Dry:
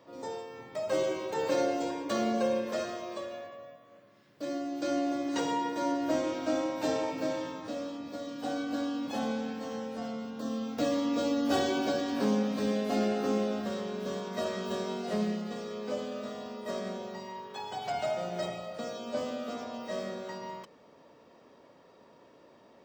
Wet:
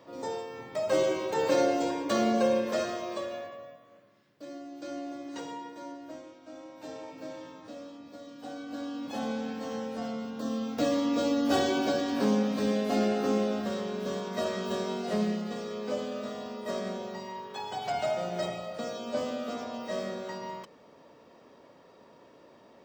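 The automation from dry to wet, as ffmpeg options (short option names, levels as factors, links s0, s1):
-af "volume=16.8,afade=t=out:st=3.37:d=1.08:silence=0.266073,afade=t=out:st=5.35:d=1.05:silence=0.281838,afade=t=in:st=6.4:d=1.24:silence=0.251189,afade=t=in:st=8.6:d=1.13:silence=0.354813"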